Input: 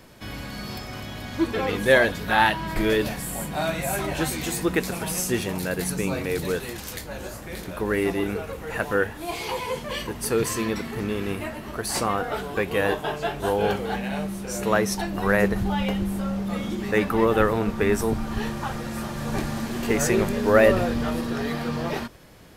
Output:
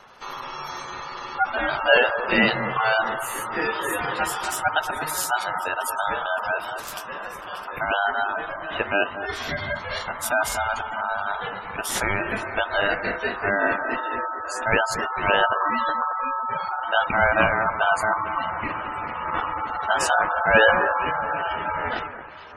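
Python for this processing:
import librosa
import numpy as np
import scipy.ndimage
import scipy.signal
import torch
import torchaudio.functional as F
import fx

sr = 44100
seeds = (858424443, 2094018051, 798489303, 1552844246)

y = x * np.sin(2.0 * np.pi * 1100.0 * np.arange(len(x)) / sr)
y = fx.echo_alternate(y, sr, ms=225, hz=1900.0, feedback_pct=67, wet_db=-10.5)
y = fx.spec_gate(y, sr, threshold_db=-20, keep='strong')
y = y * librosa.db_to_amplitude(3.5)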